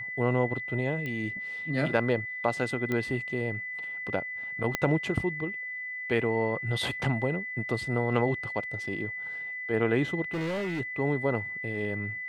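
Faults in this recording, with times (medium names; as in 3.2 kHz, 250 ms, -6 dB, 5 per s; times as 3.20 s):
whine 2 kHz -34 dBFS
1.06 s: pop -23 dBFS
2.92 s: pop -18 dBFS
4.75 s: pop -11 dBFS
10.33–10.81 s: clipped -28.5 dBFS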